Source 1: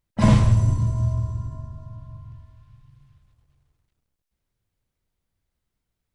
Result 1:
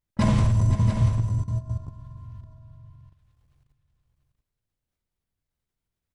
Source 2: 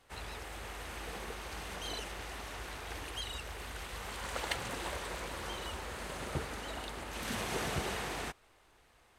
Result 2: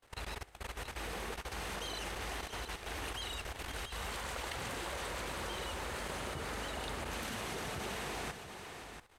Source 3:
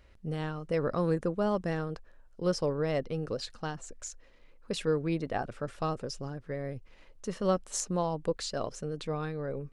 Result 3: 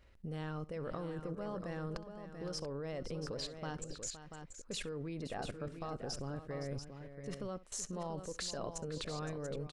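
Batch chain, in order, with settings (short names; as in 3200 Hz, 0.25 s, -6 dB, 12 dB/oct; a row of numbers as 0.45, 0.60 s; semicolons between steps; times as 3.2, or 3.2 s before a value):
level quantiser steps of 22 dB; tapped delay 65/515/686 ms -20/-12/-8.5 dB; gain +3 dB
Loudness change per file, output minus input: -2.5, -0.5, -9.0 LU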